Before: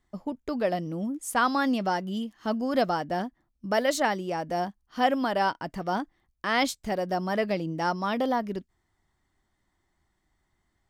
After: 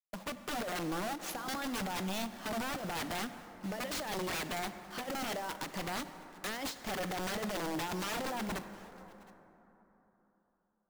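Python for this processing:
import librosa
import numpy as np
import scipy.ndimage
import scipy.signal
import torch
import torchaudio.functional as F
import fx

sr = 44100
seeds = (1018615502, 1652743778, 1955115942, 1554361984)

y = scipy.ndimage.median_filter(x, 5, mode='constant')
y = scipy.signal.sosfilt(scipy.signal.butter(2, 240.0, 'highpass', fs=sr, output='sos'), y)
y = fx.over_compress(y, sr, threshold_db=-30.0, ratio=-0.5)
y = fx.quant_companded(y, sr, bits=4)
y = 10.0 ** (-32.5 / 20.0) * (np.abs((y / 10.0 ** (-32.5 / 20.0) + 3.0) % 4.0 - 2.0) - 1.0)
y = y + 10.0 ** (-22.5 / 20.0) * np.pad(y, (int(715 * sr / 1000.0), 0))[:len(y)]
y = fx.rev_plate(y, sr, seeds[0], rt60_s=3.8, hf_ratio=0.4, predelay_ms=0, drr_db=10.0)
y = fx.end_taper(y, sr, db_per_s=180.0)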